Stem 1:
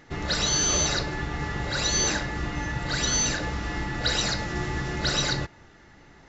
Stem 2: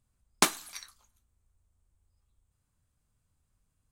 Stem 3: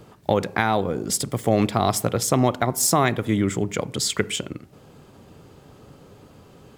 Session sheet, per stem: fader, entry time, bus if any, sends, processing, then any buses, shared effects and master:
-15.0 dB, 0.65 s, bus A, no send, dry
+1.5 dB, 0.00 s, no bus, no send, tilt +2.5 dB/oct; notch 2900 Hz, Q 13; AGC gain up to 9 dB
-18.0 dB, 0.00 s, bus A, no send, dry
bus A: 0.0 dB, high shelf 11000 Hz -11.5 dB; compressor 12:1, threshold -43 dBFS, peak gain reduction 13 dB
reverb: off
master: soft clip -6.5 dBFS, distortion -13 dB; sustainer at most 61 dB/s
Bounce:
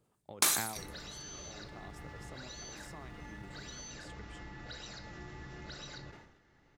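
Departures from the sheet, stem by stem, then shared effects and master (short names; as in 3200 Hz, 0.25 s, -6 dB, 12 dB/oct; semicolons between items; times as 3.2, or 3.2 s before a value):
stem 2 +1.5 dB -> -10.0 dB; stem 3 -18.0 dB -> -28.0 dB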